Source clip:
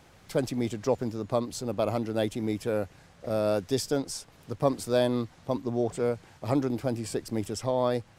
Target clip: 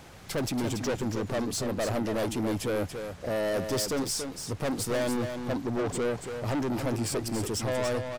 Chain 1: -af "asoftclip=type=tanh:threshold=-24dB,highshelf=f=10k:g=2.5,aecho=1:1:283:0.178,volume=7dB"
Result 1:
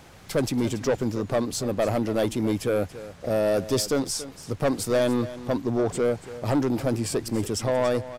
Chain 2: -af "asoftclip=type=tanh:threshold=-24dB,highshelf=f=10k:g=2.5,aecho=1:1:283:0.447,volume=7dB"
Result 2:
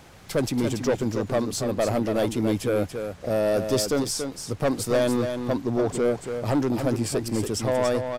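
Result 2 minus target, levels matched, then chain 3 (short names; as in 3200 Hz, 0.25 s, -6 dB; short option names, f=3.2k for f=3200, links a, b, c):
soft clip: distortion -6 dB
-af "asoftclip=type=tanh:threshold=-33.5dB,highshelf=f=10k:g=2.5,aecho=1:1:283:0.447,volume=7dB"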